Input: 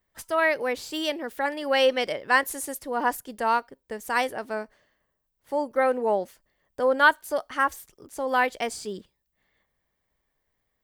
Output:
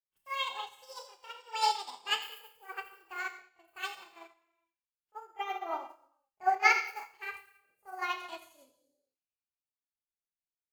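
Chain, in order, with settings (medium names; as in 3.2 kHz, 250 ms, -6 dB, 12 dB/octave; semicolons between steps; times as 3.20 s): gliding tape speed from 170% -> 133%; dynamic bell 1.7 kHz, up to -4 dB, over -35 dBFS, Q 3.7; granular stretch 1.5×, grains 164 ms; feedback echo behind a high-pass 86 ms, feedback 35%, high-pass 2.5 kHz, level -4 dB; gated-style reverb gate 470 ms falling, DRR 0.5 dB; upward expansion 2.5:1, over -36 dBFS; trim -4 dB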